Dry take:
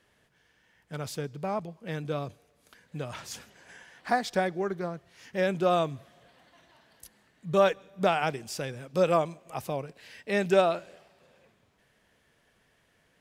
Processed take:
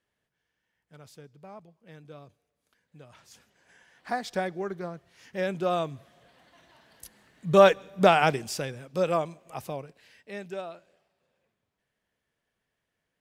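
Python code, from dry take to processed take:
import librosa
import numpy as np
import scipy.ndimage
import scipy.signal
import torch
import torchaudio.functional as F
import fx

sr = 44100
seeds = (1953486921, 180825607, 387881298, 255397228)

y = fx.gain(x, sr, db=fx.line((3.2, -14.5), (4.32, -2.5), (5.88, -2.5), (7.65, 6.0), (8.37, 6.0), (8.84, -2.0), (9.67, -2.0), (10.57, -14.5)))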